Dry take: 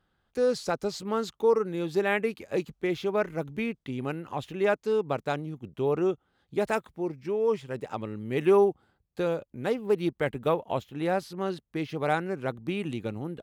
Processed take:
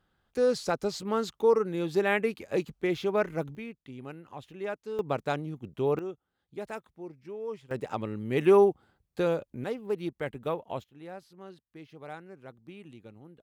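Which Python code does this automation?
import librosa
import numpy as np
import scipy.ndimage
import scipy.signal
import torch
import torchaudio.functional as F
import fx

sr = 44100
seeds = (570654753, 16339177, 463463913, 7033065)

y = fx.gain(x, sr, db=fx.steps((0.0, 0.0), (3.55, -10.0), (4.99, -0.5), (5.99, -11.0), (7.71, 1.0), (9.64, -6.0), (10.84, -16.0)))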